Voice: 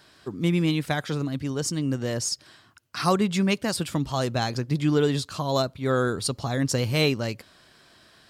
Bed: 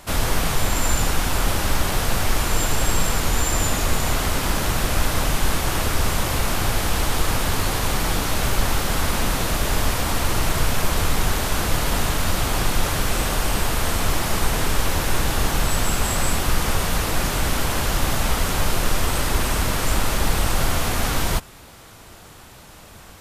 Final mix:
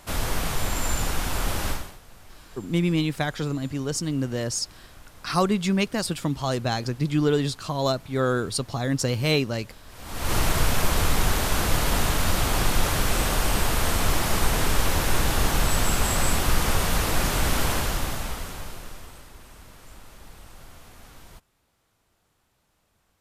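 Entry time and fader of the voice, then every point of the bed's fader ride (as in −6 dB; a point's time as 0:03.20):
2.30 s, 0.0 dB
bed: 0:01.70 −5.5 dB
0:02.00 −28 dB
0:09.85 −28 dB
0:10.33 −1.5 dB
0:17.70 −1.5 dB
0:19.33 −26 dB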